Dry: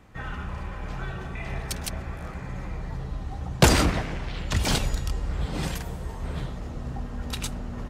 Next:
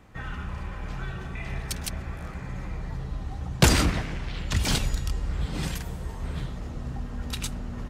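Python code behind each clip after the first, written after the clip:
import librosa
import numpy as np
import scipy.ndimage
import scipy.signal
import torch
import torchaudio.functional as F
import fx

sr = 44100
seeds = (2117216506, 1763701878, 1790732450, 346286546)

y = fx.dynamic_eq(x, sr, hz=640.0, q=0.75, threshold_db=-43.0, ratio=4.0, max_db=-5)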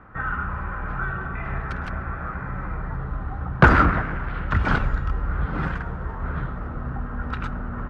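y = fx.lowpass_res(x, sr, hz=1400.0, q=4.3)
y = y * 10.0 ** (3.5 / 20.0)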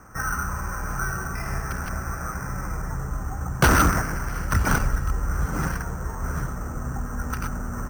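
y = np.repeat(scipy.signal.resample_poly(x, 1, 6), 6)[:len(x)]
y = np.clip(y, -10.0 ** (-12.5 / 20.0), 10.0 ** (-12.5 / 20.0))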